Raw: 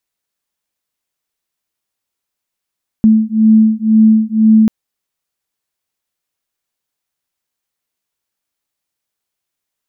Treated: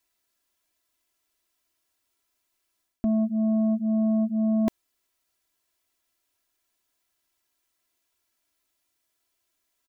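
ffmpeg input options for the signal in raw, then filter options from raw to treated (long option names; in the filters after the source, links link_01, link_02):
-f lavfi -i "aevalsrc='0.335*(sin(2*PI*218*t)+sin(2*PI*220*t))':duration=1.64:sample_rate=44100"
-af "areverse,acompressor=threshold=-18dB:ratio=8,areverse,asoftclip=type=tanh:threshold=-18.5dB,aecho=1:1:3:0.91"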